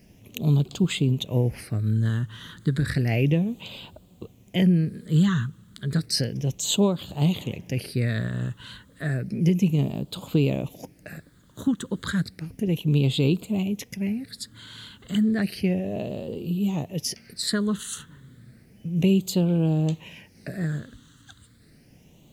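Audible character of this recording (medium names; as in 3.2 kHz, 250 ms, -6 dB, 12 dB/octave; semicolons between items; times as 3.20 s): phasing stages 8, 0.32 Hz, lowest notch 690–1800 Hz; a quantiser's noise floor 12-bit, dither none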